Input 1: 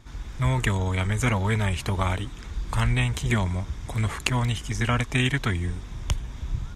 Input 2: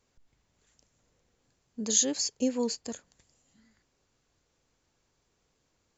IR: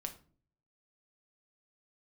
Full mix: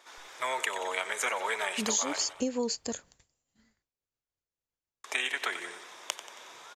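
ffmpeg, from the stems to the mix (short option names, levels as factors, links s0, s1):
-filter_complex "[0:a]highpass=f=460:w=0.5412,highpass=f=460:w=1.3066,volume=1.19,asplit=3[s0][s1][s2];[s0]atrim=end=2.33,asetpts=PTS-STARTPTS,afade=t=out:st=2.326:d=0.004:c=hsin[s3];[s1]atrim=start=2.33:end=5.04,asetpts=PTS-STARTPTS,volume=0[s4];[s2]atrim=start=5.04,asetpts=PTS-STARTPTS,afade=t=in:d=0.004:c=hsin[s5];[s3][s4][s5]concat=n=3:v=0:a=1,asplit=2[s6][s7];[s7]volume=0.2[s8];[1:a]agate=range=0.0224:threshold=0.00141:ratio=3:detection=peak,acontrast=86,volume=0.794[s9];[s8]aecho=0:1:91|182|273|364|455|546|637|728:1|0.53|0.281|0.149|0.0789|0.0418|0.0222|0.0117[s10];[s6][s9][s10]amix=inputs=3:normalize=0,equalizer=f=230:w=1.2:g=-3.5,acompressor=threshold=0.0447:ratio=5"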